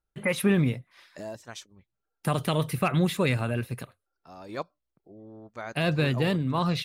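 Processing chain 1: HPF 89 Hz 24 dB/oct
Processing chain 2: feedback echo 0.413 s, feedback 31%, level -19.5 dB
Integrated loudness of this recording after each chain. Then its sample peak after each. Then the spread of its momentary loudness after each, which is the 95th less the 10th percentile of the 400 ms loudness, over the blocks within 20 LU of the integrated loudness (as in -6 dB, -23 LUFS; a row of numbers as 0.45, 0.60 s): -27.0, -27.0 LUFS; -12.0, -12.0 dBFS; 18, 18 LU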